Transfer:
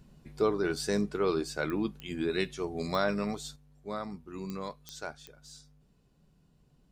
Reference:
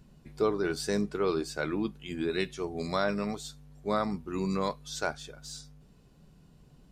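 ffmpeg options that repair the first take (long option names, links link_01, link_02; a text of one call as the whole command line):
ffmpeg -i in.wav -af "adeclick=threshold=4,asetnsamples=nb_out_samples=441:pad=0,asendcmd='3.56 volume volume 8dB',volume=0dB" out.wav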